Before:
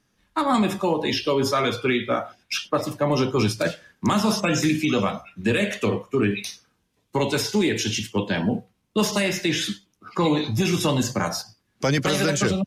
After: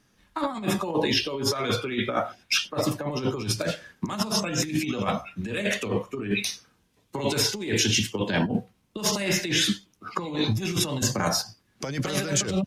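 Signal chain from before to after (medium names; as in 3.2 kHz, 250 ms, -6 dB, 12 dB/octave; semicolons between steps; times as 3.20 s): compressor with a negative ratio -25 dBFS, ratio -0.5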